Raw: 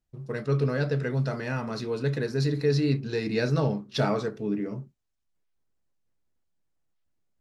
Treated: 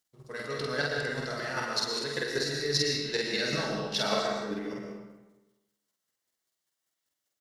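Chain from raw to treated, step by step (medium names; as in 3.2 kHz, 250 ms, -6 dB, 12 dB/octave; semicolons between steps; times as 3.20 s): high-pass 640 Hz 6 dB/octave; treble shelf 2 kHz +10.5 dB; band-stop 2.5 kHz, Q 8.2; in parallel at -11 dB: saturation -20.5 dBFS, distortion -17 dB; on the sum: square tremolo 5.1 Hz, depth 60%, duty 15%; doubling 48 ms -2 dB; on a send at -1.5 dB: reverberation RT60 1.1 s, pre-delay 75 ms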